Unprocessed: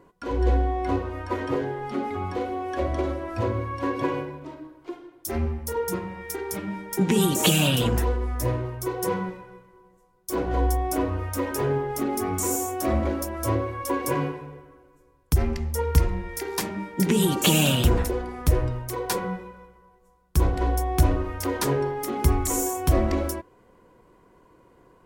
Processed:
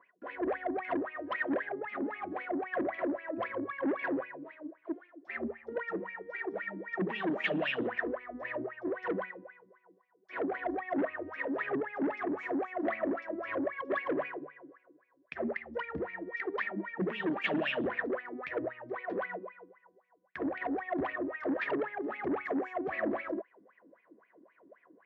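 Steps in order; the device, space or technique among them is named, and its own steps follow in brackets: wah-wah guitar rig (wah 3.8 Hz 270–2500 Hz, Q 9.9; tube stage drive 35 dB, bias 0.2; speaker cabinet 110–3700 Hz, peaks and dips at 210 Hz +7 dB, 630 Hz +7 dB, 900 Hz -5 dB, 1800 Hz +10 dB); gain +7 dB

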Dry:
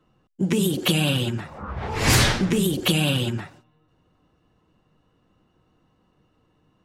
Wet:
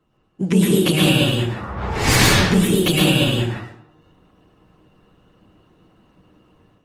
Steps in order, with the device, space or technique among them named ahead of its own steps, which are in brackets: speakerphone in a meeting room (reverb RT60 0.60 s, pre-delay 0.105 s, DRR -2.5 dB; AGC gain up to 8 dB; gain -1 dB; Opus 24 kbps 48000 Hz)

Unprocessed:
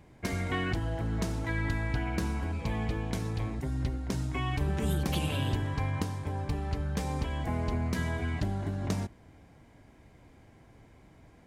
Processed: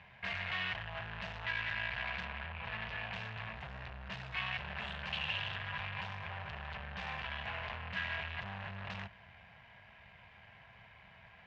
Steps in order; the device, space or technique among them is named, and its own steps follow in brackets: 2.25–2.82 LPF 2600 Hz; scooped metal amplifier (tube stage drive 42 dB, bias 0.6; speaker cabinet 97–3500 Hz, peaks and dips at 200 Hz +8 dB, 290 Hz -4 dB, 670 Hz +6 dB, 970 Hz +5 dB, 1700 Hz +7 dB, 2700 Hz +8 dB; passive tone stack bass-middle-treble 10-0-10); gain +11.5 dB

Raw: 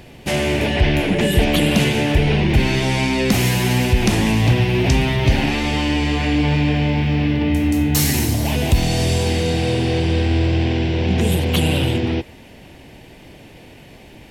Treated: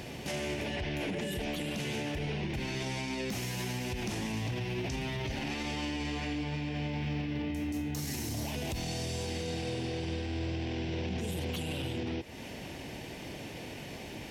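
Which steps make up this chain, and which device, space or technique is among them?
broadcast voice chain (HPF 85 Hz 6 dB/oct; de-esser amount 35%; compressor 4:1, threshold -30 dBFS, peak gain reduction 15.5 dB; bell 5800 Hz +5.5 dB 0.56 oct; limiter -27 dBFS, peak gain reduction 10.5 dB)

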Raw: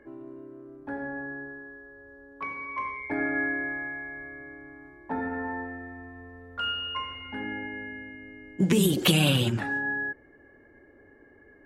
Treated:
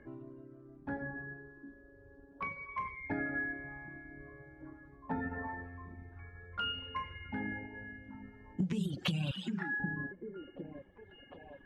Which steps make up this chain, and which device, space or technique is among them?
9.31–9.8 HPF 870 Hz 12 dB/oct; delay with a stepping band-pass 0.753 s, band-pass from 260 Hz, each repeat 0.7 oct, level -9.5 dB; reverb removal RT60 1.3 s; jukebox (LPF 6000 Hz 12 dB/oct; resonant low shelf 240 Hz +7.5 dB, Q 1.5; compressor 6:1, threshold -29 dBFS, peak gain reduction 16.5 dB); gain -3 dB

